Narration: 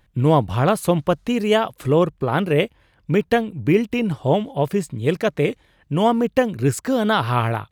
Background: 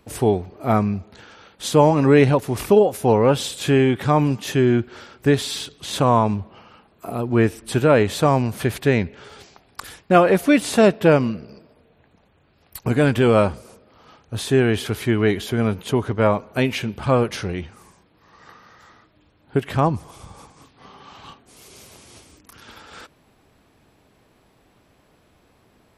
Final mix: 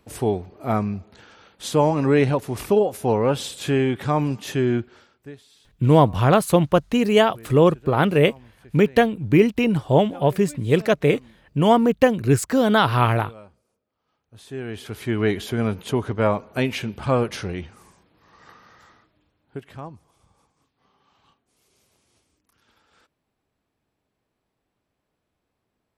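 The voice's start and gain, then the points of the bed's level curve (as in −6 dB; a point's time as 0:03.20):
5.65 s, +1.5 dB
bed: 0:04.77 −4 dB
0:05.44 −28 dB
0:13.96 −28 dB
0:15.22 −2.5 dB
0:18.81 −2.5 dB
0:19.96 −20 dB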